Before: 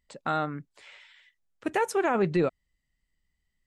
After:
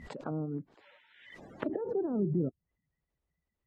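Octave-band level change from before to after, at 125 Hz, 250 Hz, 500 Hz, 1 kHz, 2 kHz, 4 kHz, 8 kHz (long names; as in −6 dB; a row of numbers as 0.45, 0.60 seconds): −0.5 dB, −2.5 dB, −7.0 dB, −17.5 dB, −17.0 dB, below −10 dB, below −20 dB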